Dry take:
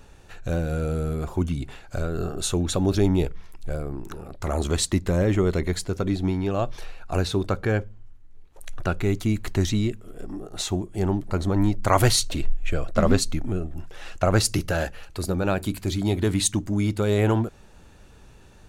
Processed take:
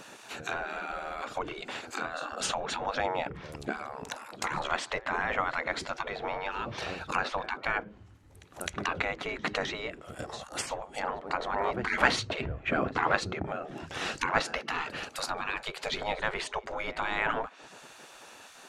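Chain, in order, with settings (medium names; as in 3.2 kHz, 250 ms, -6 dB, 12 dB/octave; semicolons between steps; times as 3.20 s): low-pass that closes with the level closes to 1.8 kHz, closed at -20.5 dBFS; pre-echo 259 ms -22 dB; spectral gate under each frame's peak -20 dB weak; trim +9 dB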